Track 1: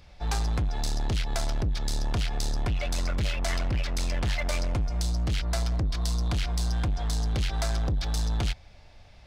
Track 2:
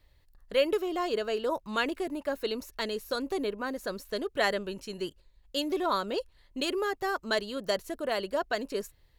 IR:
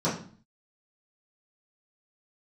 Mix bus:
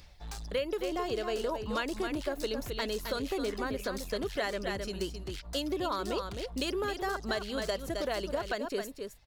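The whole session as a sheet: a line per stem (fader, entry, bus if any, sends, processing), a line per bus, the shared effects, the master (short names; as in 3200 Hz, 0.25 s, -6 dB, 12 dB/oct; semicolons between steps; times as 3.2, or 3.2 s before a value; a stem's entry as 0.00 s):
-2.0 dB, 0.00 s, no send, no echo send, reverb removal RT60 0.99 s; high shelf 3300 Hz +8.5 dB; soft clip -26.5 dBFS, distortion -17 dB; auto duck -9 dB, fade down 0.20 s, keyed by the second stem
+1.0 dB, 0.00 s, no send, echo send -8.5 dB, dry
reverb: off
echo: echo 0.264 s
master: compressor 6:1, threshold -29 dBFS, peak gain reduction 10 dB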